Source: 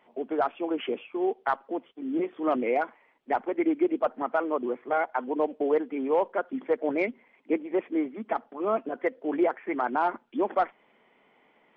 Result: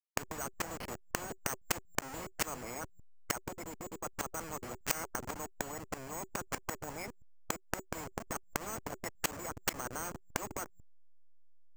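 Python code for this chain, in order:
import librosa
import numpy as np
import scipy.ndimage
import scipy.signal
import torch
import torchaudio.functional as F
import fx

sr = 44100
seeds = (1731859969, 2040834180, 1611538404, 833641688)

y = fx.delta_hold(x, sr, step_db=-28.5)
y = fx.lowpass(y, sr, hz=1300.0, slope=6)
y = fx.notch(y, sr, hz=380.0, q=12.0)
y = fx.rider(y, sr, range_db=4, speed_s=0.5)
y = fx.gate_flip(y, sr, shuts_db=-30.0, range_db=-27)
y = np.repeat(scipy.signal.resample_poly(y, 1, 6), 6)[:len(y)]
y = fx.spectral_comp(y, sr, ratio=10.0)
y = y * 10.0 ** (14.5 / 20.0)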